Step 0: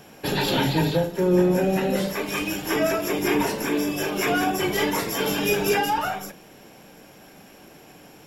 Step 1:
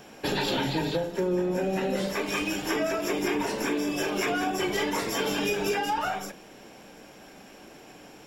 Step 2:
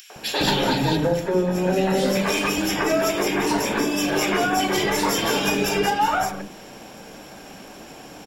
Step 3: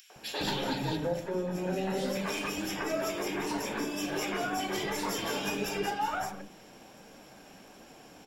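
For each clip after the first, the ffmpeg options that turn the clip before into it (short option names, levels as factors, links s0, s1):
-af "equalizer=f=100:t=o:w=0.33:g=-9,equalizer=f=160:t=o:w=0.33:g=-6,equalizer=f=12500:t=o:w=0.33:g=-12,acompressor=threshold=0.0631:ratio=6"
-filter_complex "[0:a]acompressor=mode=upward:threshold=0.00562:ratio=2.5,acrossover=split=380|2100[s0][s1][s2];[s1]adelay=100[s3];[s0]adelay=160[s4];[s4][s3][s2]amix=inputs=3:normalize=0,volume=2.66"
-af "flanger=delay=3.6:depth=8.2:regen=75:speed=1.4:shape=sinusoidal,volume=0.447"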